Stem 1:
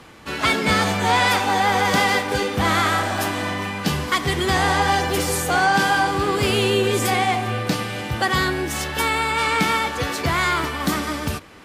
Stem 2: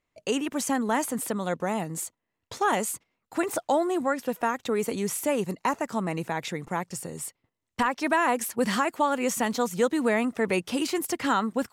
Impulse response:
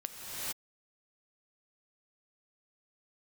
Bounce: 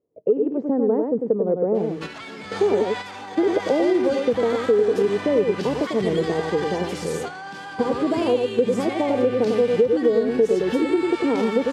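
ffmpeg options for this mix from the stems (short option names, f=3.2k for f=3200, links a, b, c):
-filter_complex "[0:a]acompressor=threshold=-23dB:ratio=2.5,alimiter=limit=-20dB:level=0:latency=1:release=25,adelay=1750,volume=-2dB[a];[1:a]lowpass=f=450:t=q:w=5.5,volume=2.5dB,asplit=3[b][c][d];[c]volume=-5dB[e];[d]apad=whole_len=590785[f];[a][f]sidechaingate=range=-6dB:threshold=-40dB:ratio=16:detection=peak[g];[e]aecho=0:1:98:1[h];[g][b][h]amix=inputs=3:normalize=0,highpass=110,lowpass=7.3k,acompressor=threshold=-15dB:ratio=6"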